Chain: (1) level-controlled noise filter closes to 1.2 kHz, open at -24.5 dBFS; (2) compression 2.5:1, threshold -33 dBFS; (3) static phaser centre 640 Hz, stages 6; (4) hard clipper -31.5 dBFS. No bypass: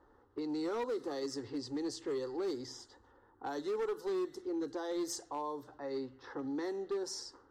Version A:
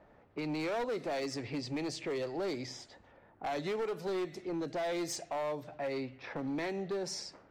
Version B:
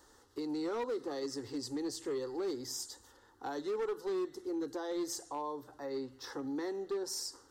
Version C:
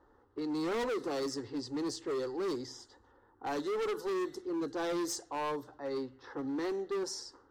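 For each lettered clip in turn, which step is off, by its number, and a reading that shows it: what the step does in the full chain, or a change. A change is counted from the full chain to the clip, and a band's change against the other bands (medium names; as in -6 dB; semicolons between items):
3, 125 Hz band +8.5 dB; 1, 8 kHz band +4.0 dB; 2, mean gain reduction 4.0 dB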